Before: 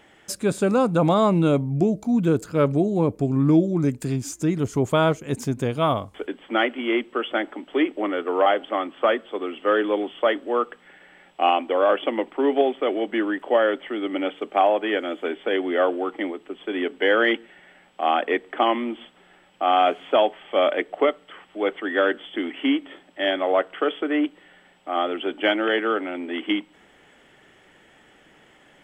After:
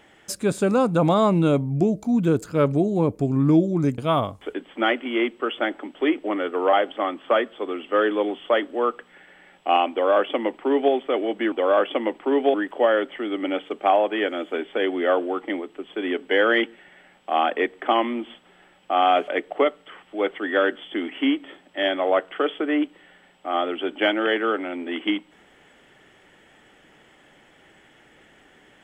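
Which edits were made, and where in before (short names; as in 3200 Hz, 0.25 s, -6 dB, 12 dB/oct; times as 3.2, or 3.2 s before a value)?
3.98–5.71 cut
11.64–12.66 copy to 13.25
19.99–20.7 cut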